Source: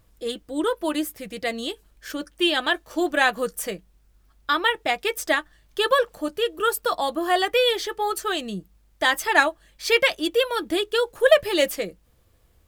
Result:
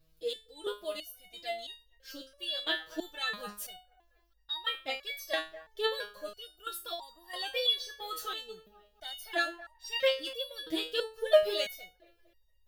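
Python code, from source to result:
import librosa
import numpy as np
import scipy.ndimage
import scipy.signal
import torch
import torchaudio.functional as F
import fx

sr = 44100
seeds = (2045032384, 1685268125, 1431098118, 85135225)

p1 = fx.graphic_eq(x, sr, hz=(250, 1000, 2000, 4000, 8000), db=(-10, -8, -6, 6, -8))
p2 = p1 + fx.echo_wet_bandpass(p1, sr, ms=233, feedback_pct=42, hz=950.0, wet_db=-16.5, dry=0)
p3 = fx.resonator_held(p2, sr, hz=3.0, low_hz=160.0, high_hz=940.0)
y = F.gain(torch.from_numpy(p3), 6.5).numpy()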